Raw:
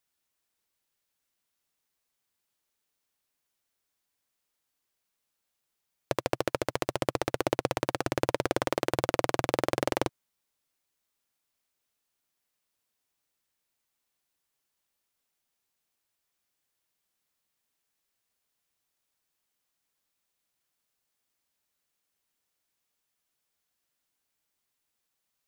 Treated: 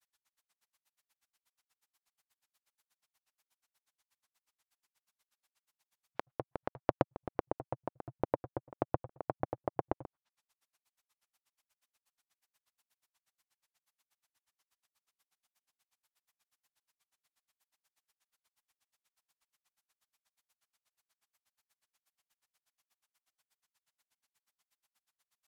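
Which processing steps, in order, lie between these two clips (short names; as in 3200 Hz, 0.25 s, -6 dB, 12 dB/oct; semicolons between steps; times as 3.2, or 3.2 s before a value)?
resonant low shelf 620 Hz -7.5 dB, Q 1.5; treble ducked by the level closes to 530 Hz, closed at -31 dBFS; grains 61 ms, grains 8.3/s, spray 15 ms, pitch spread up and down by 0 st; gain +8 dB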